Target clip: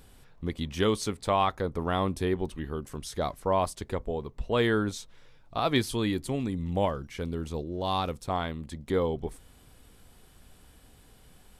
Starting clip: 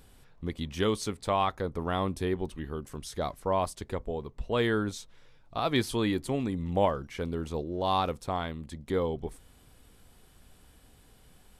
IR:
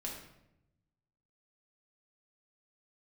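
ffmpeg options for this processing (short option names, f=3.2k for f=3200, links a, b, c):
-filter_complex "[0:a]asettb=1/sr,asplit=3[a][b][c];[a]atrim=end=5.784[d];[b]atrim=start=5.78:end=8.3,asetpts=PTS-STARTPTS,afade=t=in:d=0.004:c=qsin,afade=t=out:st=2.516:d=0.004:c=qsin,equalizer=f=840:w=0.37:g=-4.5[e];[c]atrim=start=8.296[f];[d][e]acrossfade=d=0.004:c1=hsin:c2=qsin[g];[g][f]acrossfade=d=0.004:c1=qsin:c2=hsin,volume=2dB"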